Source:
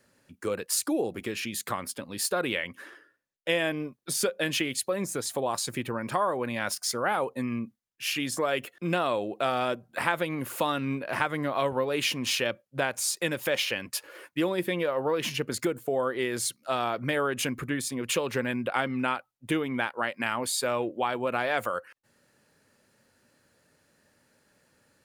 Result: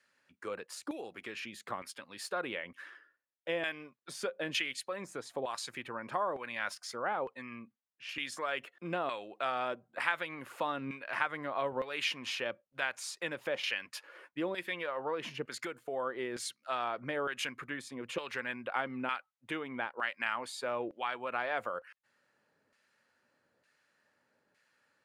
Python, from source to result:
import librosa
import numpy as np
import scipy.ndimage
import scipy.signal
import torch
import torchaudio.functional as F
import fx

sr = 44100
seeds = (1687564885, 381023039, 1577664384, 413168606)

y = fx.peak_eq(x, sr, hz=540.0, db=-6.5, octaves=2.8)
y = fx.filter_lfo_bandpass(y, sr, shape='saw_down', hz=1.1, low_hz=530.0, high_hz=2000.0, q=0.73)
y = fx.air_absorb(y, sr, metres=72.0, at=(6.95, 8.09))